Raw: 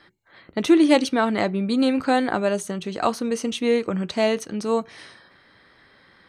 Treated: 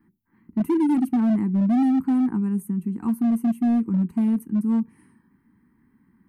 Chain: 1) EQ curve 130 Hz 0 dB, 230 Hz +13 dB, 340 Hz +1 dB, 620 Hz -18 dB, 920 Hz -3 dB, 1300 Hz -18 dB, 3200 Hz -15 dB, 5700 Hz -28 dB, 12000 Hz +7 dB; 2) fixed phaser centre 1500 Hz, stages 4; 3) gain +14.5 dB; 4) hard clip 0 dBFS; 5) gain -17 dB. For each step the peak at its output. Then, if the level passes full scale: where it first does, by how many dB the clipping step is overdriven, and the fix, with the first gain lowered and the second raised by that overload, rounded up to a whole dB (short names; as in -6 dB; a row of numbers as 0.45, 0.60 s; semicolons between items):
-5.5, -8.0, +6.5, 0.0, -17.0 dBFS; step 3, 6.5 dB; step 3 +7.5 dB, step 5 -10 dB